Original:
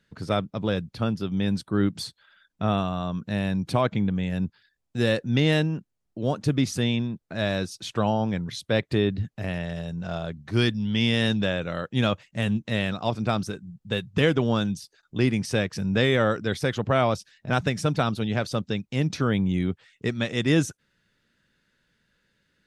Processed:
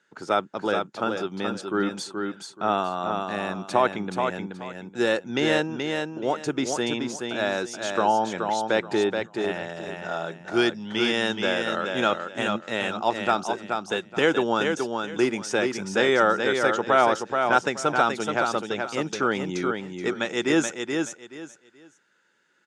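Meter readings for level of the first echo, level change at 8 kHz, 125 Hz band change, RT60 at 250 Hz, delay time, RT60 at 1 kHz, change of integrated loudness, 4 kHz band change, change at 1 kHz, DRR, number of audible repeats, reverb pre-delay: -5.0 dB, +4.5 dB, -13.0 dB, no reverb, 427 ms, no reverb, +0.5 dB, +0.5 dB, +7.5 dB, no reverb, 3, no reverb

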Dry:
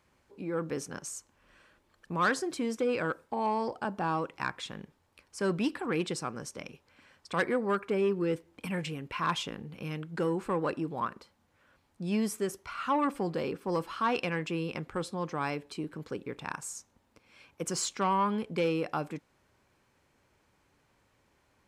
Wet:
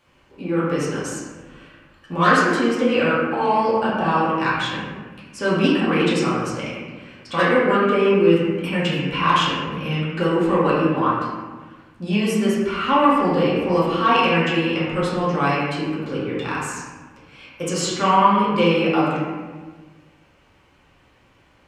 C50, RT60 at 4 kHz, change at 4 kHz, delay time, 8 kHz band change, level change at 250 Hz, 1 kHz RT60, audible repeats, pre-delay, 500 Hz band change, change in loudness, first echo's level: -1.0 dB, 0.90 s, +14.5 dB, no echo, +6.0 dB, +13.5 dB, 1.3 s, no echo, 3 ms, +12.5 dB, +13.0 dB, no echo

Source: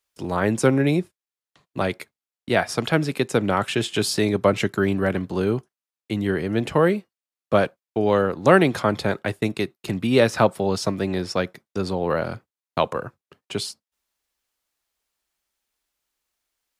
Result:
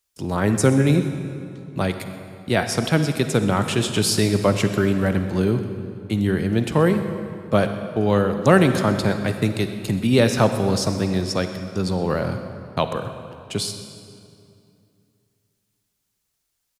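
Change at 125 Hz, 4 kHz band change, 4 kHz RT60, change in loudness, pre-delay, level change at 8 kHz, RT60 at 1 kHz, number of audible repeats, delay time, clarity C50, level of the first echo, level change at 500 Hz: +5.5 dB, +2.5 dB, 1.9 s, +1.5 dB, 39 ms, +5.5 dB, 2.4 s, 1, 127 ms, 8.0 dB, -19.0 dB, 0.0 dB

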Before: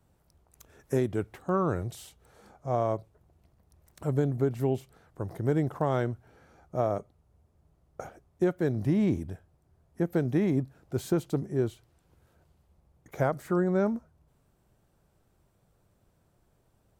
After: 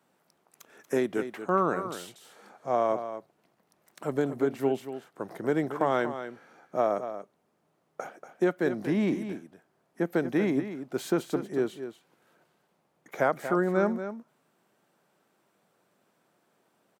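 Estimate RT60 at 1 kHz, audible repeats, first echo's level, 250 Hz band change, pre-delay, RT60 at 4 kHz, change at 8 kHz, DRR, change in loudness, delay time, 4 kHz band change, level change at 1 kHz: no reverb, 1, -10.5 dB, 0.0 dB, no reverb, no reverb, +1.5 dB, no reverb, +0.5 dB, 236 ms, +4.5 dB, +4.5 dB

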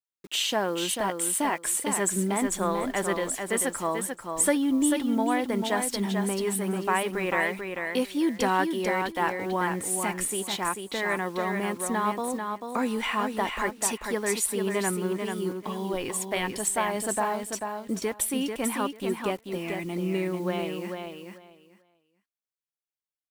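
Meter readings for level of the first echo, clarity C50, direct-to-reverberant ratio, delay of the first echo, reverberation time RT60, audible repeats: -5.5 dB, no reverb, no reverb, 441 ms, no reverb, 2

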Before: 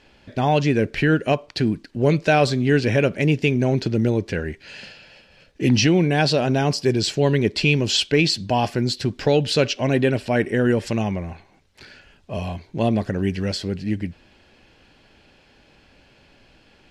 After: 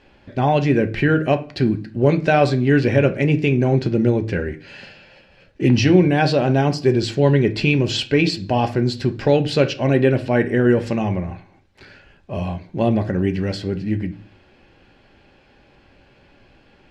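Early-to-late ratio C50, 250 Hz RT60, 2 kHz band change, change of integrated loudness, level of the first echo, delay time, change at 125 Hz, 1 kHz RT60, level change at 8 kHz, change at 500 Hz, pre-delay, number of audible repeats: 16.5 dB, 0.55 s, +0.5 dB, +2.0 dB, no echo, no echo, +3.0 dB, 0.40 s, -6.5 dB, +2.5 dB, 3 ms, no echo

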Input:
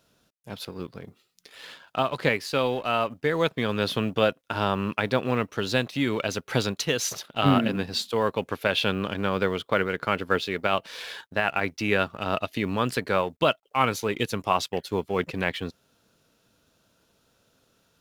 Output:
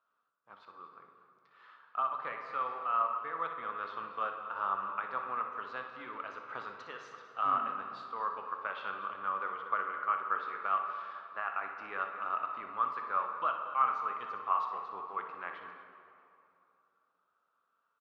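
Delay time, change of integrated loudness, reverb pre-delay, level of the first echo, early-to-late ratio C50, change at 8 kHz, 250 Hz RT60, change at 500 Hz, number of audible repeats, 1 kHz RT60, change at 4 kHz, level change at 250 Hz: 61 ms, -9.0 dB, 8 ms, -10.0 dB, 4.0 dB, under -35 dB, 2.9 s, -20.0 dB, 2, 2.7 s, -25.0 dB, -28.0 dB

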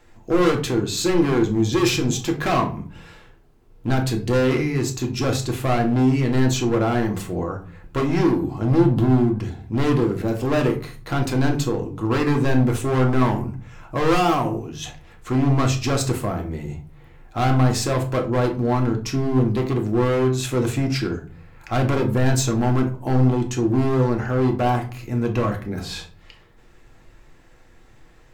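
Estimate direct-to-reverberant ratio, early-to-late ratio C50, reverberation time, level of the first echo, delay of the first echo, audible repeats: 2.0 dB, 11.0 dB, 0.40 s, no echo, no echo, no echo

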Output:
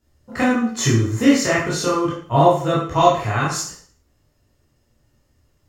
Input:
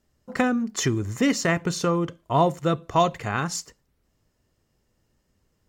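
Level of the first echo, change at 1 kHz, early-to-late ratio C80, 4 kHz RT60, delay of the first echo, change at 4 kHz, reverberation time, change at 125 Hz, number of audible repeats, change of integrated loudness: no echo, +6.0 dB, 7.5 dB, 0.50 s, no echo, +5.5 dB, 0.55 s, +6.5 dB, no echo, +6.0 dB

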